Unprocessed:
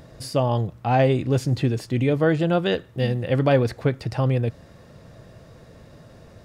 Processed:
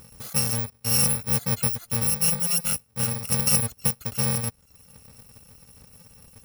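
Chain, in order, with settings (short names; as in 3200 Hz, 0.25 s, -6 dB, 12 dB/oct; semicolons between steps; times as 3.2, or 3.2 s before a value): FFT order left unsorted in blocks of 128 samples; reverb removal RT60 0.54 s; gain -2.5 dB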